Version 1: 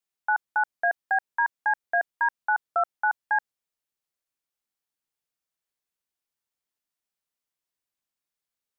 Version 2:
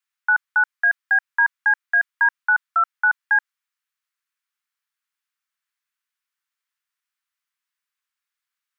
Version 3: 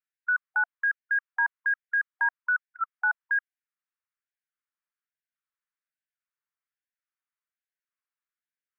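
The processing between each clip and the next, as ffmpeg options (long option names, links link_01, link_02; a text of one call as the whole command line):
ffmpeg -i in.wav -af "highpass=frequency=1100:width=0.5412,highpass=frequency=1100:width=1.3066,equalizer=frequency=1500:width=0.62:gain=9.5" out.wav
ffmpeg -i in.wav -af "lowpass=1900,afftfilt=real='re*gte(b*sr/1024,710*pow(1500/710,0.5+0.5*sin(2*PI*1.2*pts/sr)))':imag='im*gte(b*sr/1024,710*pow(1500/710,0.5+0.5*sin(2*PI*1.2*pts/sr)))':win_size=1024:overlap=0.75,volume=-6dB" out.wav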